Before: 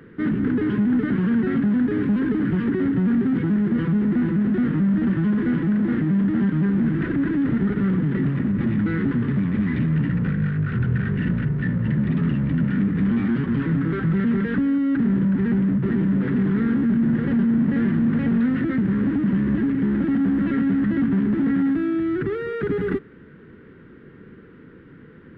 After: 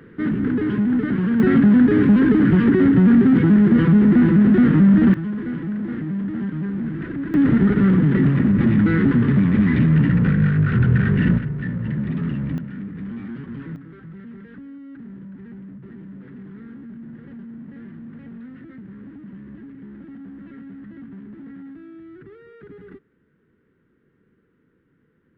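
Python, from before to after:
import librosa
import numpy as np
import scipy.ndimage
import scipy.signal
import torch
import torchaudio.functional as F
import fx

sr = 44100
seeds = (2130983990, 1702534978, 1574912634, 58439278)

y = fx.gain(x, sr, db=fx.steps((0.0, 0.5), (1.4, 7.0), (5.14, -5.5), (7.34, 5.5), (11.38, -3.0), (12.58, -11.0), (13.76, -18.5)))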